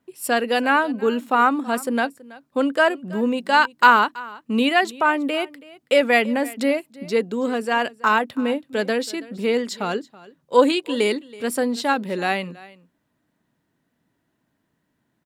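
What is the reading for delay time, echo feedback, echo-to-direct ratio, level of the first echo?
0.327 s, no steady repeat, -20.5 dB, -20.5 dB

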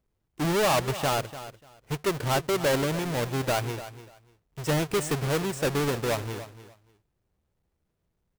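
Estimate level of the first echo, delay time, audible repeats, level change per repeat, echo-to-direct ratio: -14.0 dB, 0.294 s, 2, -14.5 dB, -14.0 dB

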